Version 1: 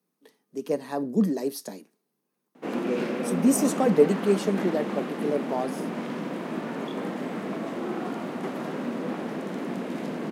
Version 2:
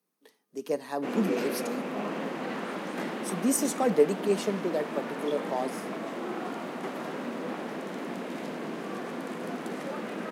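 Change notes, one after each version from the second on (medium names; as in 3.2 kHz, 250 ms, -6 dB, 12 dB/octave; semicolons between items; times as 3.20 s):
background: entry -1.60 s; master: add bass shelf 310 Hz -9 dB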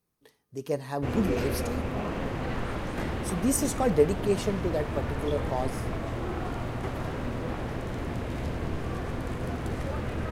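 master: remove steep high-pass 180 Hz 48 dB/octave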